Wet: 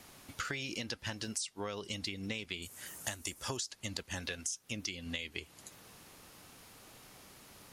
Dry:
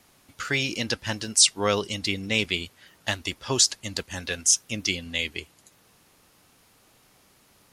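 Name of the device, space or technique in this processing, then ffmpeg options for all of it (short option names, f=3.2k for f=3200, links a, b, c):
serial compression, leveller first: -filter_complex "[0:a]asettb=1/sr,asplit=3[a][b][c];[a]atrim=end=2.624[d];[b]atrim=start=2.62:end=3.57,asetpts=PTS-STARTPTS,afade=t=in:d=0.004:c=qsin,afade=t=out:st=0.946:d=0.004:c=qsin,highshelf=f=5.7k:t=q:w=1.5:g=11.5[e];[c]atrim=start=3.566[f];[d][e]acrossfade=d=0.004:c1=hsin:c2=qsin[g];[g][f]acrossfade=d=0.004:c1=qsin:c2=hsin,acompressor=threshold=-28dB:ratio=2.5,acompressor=threshold=-40dB:ratio=6,volume=3.5dB"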